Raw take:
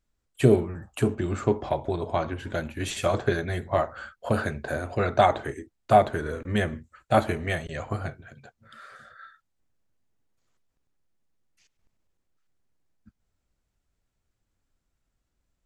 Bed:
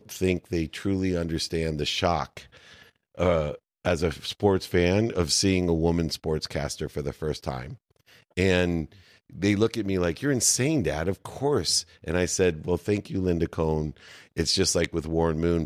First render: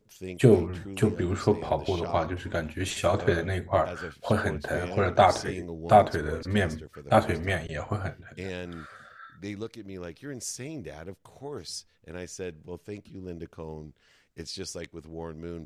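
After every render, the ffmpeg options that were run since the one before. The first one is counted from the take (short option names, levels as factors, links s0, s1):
-filter_complex "[1:a]volume=0.2[s0];[0:a][s0]amix=inputs=2:normalize=0"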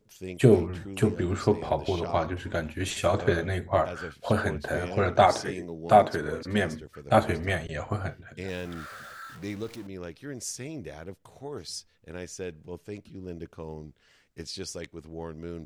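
-filter_complex "[0:a]asettb=1/sr,asplit=3[s0][s1][s2];[s0]atrim=end=5.264[s3];[s1]atrim=start=5.26:end=6.82,asetpts=PTS-STARTPTS,afade=t=in:d=0.004:c=qsin,afade=t=out:st=1.556:d=0.004:c=qsin,highpass=120[s4];[s2]atrim=start=6.816[s5];[s3][s4]acrossfade=d=0.004:c1=hsin:c2=qsin[s6];[s6][s5]acrossfade=d=0.004:c1=qsin:c2=hsin,asettb=1/sr,asplit=3[s7][s8][s9];[s7]atrim=end=8.484[s10];[s8]atrim=start=8.48:end=9.87,asetpts=PTS-STARTPTS,afade=t=in:d=0.004:c=qsin,afade=t=out:st=1.386:d=0.004:c=qsin,aeval=exprs='val(0)+0.5*0.00708*sgn(val(0))':c=same[s11];[s9]atrim=start=9.866[s12];[s10][s11]acrossfade=d=0.004:c1=hsin:c2=qsin[s13];[s13][s12]acrossfade=d=0.004:c1=qsin:c2=hsin"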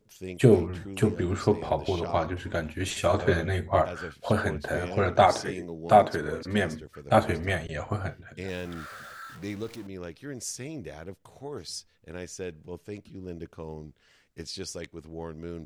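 -filter_complex "[0:a]asettb=1/sr,asplit=3[s0][s1][s2];[s0]atrim=end=3.094[s3];[s1]atrim=start=3.09:end=3.82,asetpts=PTS-STARTPTS,afade=t=in:d=0.004:c=qsin,afade=t=out:st=0.726:d=0.004:c=qsin,asplit=2[s4][s5];[s5]adelay=13,volume=0.562[s6];[s4][s6]amix=inputs=2:normalize=0,atrim=end_sample=32193[s7];[s2]atrim=start=3.816[s8];[s3][s7]acrossfade=d=0.004:c1=hsin:c2=qsin[s9];[s9][s8]acrossfade=d=0.004:c1=qsin:c2=hsin"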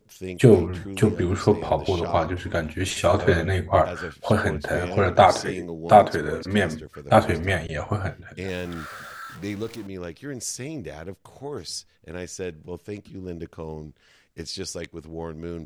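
-af "volume=1.68,alimiter=limit=0.891:level=0:latency=1"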